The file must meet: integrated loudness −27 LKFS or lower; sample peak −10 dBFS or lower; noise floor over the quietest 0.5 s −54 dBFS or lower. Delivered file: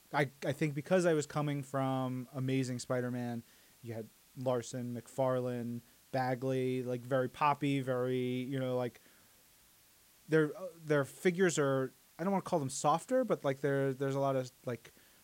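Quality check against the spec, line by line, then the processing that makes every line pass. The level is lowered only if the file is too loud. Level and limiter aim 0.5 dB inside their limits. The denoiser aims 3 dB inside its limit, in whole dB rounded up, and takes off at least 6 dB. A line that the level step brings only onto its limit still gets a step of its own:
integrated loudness −34.5 LKFS: in spec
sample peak −17.0 dBFS: in spec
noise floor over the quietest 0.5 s −65 dBFS: in spec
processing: no processing needed

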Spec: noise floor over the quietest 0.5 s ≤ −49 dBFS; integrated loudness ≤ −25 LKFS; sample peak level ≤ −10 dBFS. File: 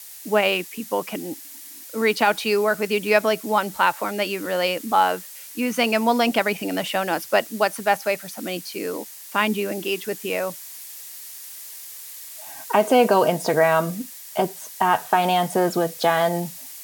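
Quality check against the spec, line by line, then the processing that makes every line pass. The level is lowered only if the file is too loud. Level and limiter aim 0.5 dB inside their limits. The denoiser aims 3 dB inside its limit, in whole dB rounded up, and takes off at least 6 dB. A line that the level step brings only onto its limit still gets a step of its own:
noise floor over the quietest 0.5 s −41 dBFS: out of spec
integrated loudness −22.0 LKFS: out of spec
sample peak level −5.0 dBFS: out of spec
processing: broadband denoise 8 dB, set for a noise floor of −41 dBFS
level −3.5 dB
brickwall limiter −10.5 dBFS

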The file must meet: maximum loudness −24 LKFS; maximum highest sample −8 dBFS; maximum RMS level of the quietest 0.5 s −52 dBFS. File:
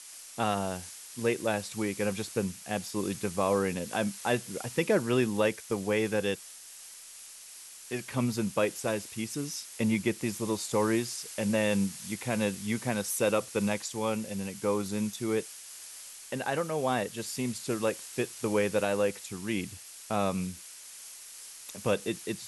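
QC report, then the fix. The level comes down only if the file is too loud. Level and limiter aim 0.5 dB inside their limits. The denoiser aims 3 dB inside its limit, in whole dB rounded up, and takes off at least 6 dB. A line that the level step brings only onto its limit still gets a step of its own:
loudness −31.0 LKFS: in spec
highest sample −13.0 dBFS: in spec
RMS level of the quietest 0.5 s −48 dBFS: out of spec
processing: broadband denoise 7 dB, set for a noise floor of −48 dBFS

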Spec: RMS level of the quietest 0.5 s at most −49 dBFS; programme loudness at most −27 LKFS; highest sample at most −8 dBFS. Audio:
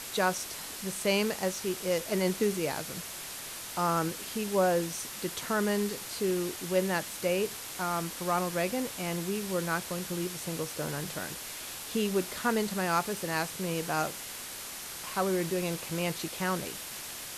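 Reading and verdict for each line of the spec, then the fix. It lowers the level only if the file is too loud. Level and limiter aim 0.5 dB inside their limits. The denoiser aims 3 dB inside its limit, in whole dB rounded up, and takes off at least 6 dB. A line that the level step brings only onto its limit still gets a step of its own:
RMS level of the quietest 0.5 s −41 dBFS: out of spec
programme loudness −31.5 LKFS: in spec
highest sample −14.5 dBFS: in spec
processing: broadband denoise 11 dB, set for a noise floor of −41 dBFS

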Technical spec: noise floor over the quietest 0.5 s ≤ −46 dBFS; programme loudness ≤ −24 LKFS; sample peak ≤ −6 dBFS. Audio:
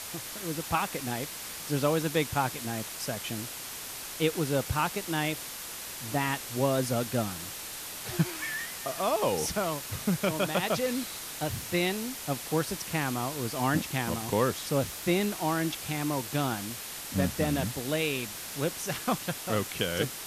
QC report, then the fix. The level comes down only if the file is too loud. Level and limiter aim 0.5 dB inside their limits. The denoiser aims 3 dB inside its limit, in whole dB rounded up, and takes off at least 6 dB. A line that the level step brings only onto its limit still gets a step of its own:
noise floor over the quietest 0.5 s −40 dBFS: out of spec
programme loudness −30.5 LKFS: in spec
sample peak −13.0 dBFS: in spec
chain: broadband denoise 9 dB, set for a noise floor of −40 dBFS

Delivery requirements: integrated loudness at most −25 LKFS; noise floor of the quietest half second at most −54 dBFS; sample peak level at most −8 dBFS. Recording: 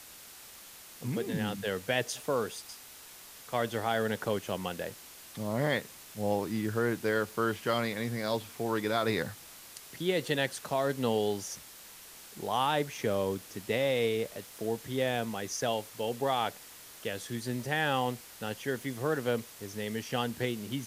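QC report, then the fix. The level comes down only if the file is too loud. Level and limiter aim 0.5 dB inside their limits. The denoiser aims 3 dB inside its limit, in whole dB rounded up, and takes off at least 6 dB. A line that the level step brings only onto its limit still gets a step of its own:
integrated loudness −32.5 LKFS: in spec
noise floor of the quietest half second −50 dBFS: out of spec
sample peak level −15.0 dBFS: in spec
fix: broadband denoise 7 dB, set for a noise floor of −50 dBFS

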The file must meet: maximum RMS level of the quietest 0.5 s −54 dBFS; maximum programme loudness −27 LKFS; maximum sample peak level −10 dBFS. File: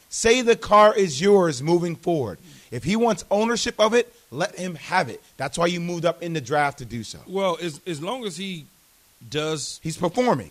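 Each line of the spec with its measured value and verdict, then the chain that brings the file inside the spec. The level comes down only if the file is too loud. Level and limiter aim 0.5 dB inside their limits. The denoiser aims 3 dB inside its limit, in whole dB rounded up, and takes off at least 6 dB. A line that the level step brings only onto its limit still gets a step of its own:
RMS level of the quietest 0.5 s −57 dBFS: in spec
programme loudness −22.5 LKFS: out of spec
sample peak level −5.0 dBFS: out of spec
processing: level −5 dB
brickwall limiter −10.5 dBFS

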